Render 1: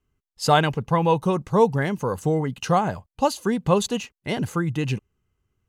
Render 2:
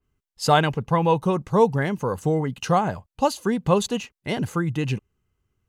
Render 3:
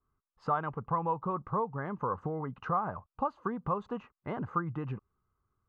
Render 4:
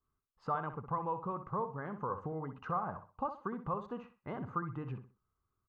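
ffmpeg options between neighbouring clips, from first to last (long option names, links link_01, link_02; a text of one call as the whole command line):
ffmpeg -i in.wav -af "adynamicequalizer=threshold=0.01:dfrequency=3400:dqfactor=0.7:tfrequency=3400:tqfactor=0.7:attack=5:release=100:ratio=0.375:range=2:mode=cutabove:tftype=highshelf" out.wav
ffmpeg -i in.wav -af "acompressor=threshold=-25dB:ratio=6,lowpass=frequency=1200:width_type=q:width=4.9,volume=-7.5dB" out.wav
ffmpeg -i in.wav -filter_complex "[0:a]asplit=2[link_01][link_02];[link_02]adelay=63,lowpass=frequency=4400:poles=1,volume=-10dB,asplit=2[link_03][link_04];[link_04]adelay=63,lowpass=frequency=4400:poles=1,volume=0.29,asplit=2[link_05][link_06];[link_06]adelay=63,lowpass=frequency=4400:poles=1,volume=0.29[link_07];[link_01][link_03][link_05][link_07]amix=inputs=4:normalize=0,volume=-5dB" out.wav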